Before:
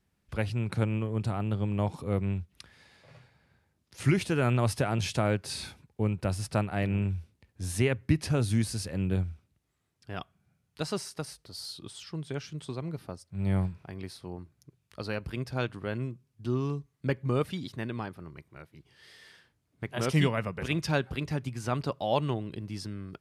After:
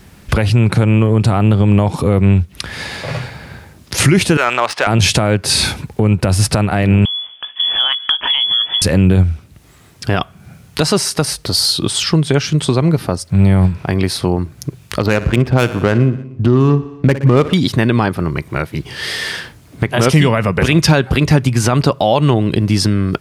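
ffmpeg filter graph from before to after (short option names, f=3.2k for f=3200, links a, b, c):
-filter_complex "[0:a]asettb=1/sr,asplit=3[a][b][c];[a]atrim=end=4.374[d];[b]atrim=start=4.37:end=4.87,asetpts=PTS-STARTPTS,afade=t=in:d=0.004:c=qsin,afade=t=out:st=0.496:d=0.004:c=qsin,highpass=890,adynamicsmooth=sensitivity=4.5:basefreq=2.2k[e];[c]atrim=start=4.866[f];[d][e]acrossfade=d=0.004:c1=hsin:c2=qsin[g];[g][f]acrossfade=d=0.004:c1=qsin:c2=hsin,asettb=1/sr,asplit=3[h][i][j];[h]atrim=end=7.054[k];[i]atrim=start=7.05:end=8.82,asetpts=PTS-STARTPTS,afade=t=in:d=0.004:c=qsin,afade=t=out:st=1.766:d=0.004:c=qsin,asplit=2[l][m];[m]adelay=17,volume=-12.5dB[n];[l][n]amix=inputs=2:normalize=0,atrim=end_sample=78057,lowpass=f=3k:t=q:w=0.5098,lowpass=f=3k:t=q:w=0.6013,lowpass=f=3k:t=q:w=0.9,lowpass=f=3k:t=q:w=2.563,afreqshift=-3500,acompressor=threshold=-45dB:ratio=3:attack=3.2:release=140:knee=1:detection=peak[o];[j]atrim=start=8.816[p];[k][o]acrossfade=d=0.004:c1=hsin:c2=qsin[q];[q][p]acrossfade=d=0.004:c1=qsin:c2=hsin,asettb=1/sr,asplit=3[r][s][t];[r]atrim=end=15.004[u];[s]atrim=start=15:end=17.54,asetpts=PTS-STARTPTS,afade=t=in:d=0.004:c=qsin,afade=t=out:st=2.536:d=0.004:c=qsin,adynamicsmooth=sensitivity=6.5:basefreq=1.4k,highshelf=f=8.3k:g=9.5,aecho=1:1:60|120|180|240|300:0.133|0.0787|0.0464|0.0274|0.0162,atrim=end_sample=112014[v];[t]atrim=start=17.536[w];[u][v]acrossfade=d=0.004:c1=hsin:c2=qsin[x];[x][w]acrossfade=d=0.004:c1=qsin:c2=hsin,acompressor=threshold=-50dB:ratio=2,alimiter=level_in=34dB:limit=-1dB:release=50:level=0:latency=1,volume=-1dB"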